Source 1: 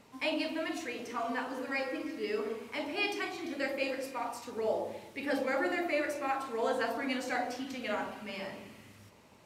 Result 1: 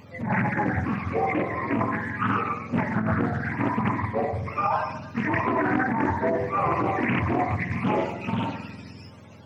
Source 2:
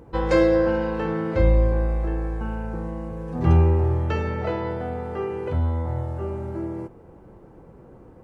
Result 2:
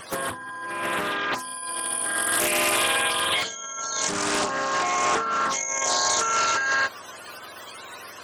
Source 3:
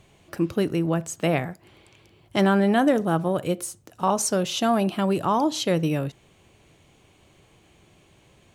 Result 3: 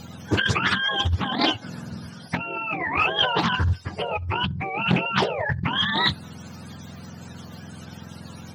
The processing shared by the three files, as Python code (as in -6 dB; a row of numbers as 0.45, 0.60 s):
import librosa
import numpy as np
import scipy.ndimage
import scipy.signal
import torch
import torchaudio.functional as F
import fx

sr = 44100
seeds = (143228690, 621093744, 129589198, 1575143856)

y = fx.octave_mirror(x, sr, pivot_hz=730.0)
y = fx.over_compress(y, sr, threshold_db=-34.0, ratio=-1.0)
y = fx.doppler_dist(y, sr, depth_ms=0.49)
y = y * 10.0 ** (-26 / 20.0) / np.sqrt(np.mean(np.square(y)))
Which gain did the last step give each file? +11.5, +7.0, +9.0 dB